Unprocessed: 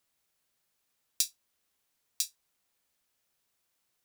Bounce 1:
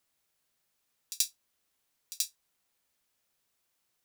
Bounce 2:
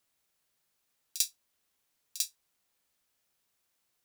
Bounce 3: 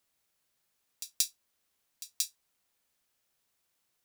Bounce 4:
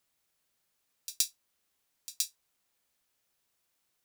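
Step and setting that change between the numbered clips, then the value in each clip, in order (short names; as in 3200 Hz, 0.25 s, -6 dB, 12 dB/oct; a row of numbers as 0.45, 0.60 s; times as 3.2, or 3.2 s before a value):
pre-echo, time: 82, 46, 180, 121 ms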